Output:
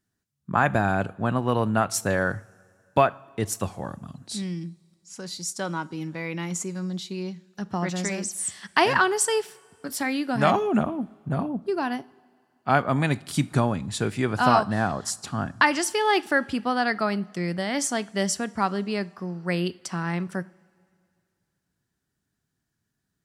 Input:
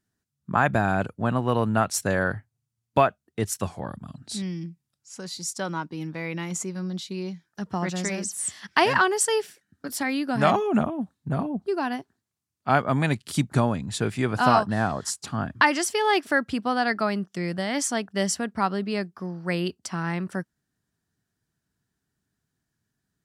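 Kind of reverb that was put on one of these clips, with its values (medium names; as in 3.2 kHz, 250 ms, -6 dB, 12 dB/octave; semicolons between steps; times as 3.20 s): two-slope reverb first 0.44 s, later 2.4 s, from -17 dB, DRR 16 dB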